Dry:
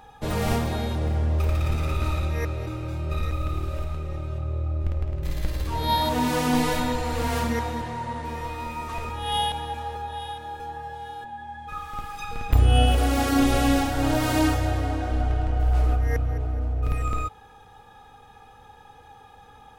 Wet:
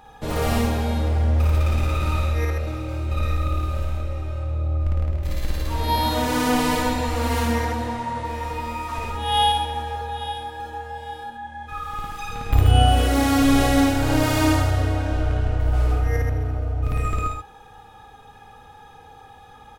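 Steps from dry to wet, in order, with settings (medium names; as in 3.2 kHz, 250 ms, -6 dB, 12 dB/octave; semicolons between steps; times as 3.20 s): loudspeakers at several distances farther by 19 m -1 dB, 45 m -4 dB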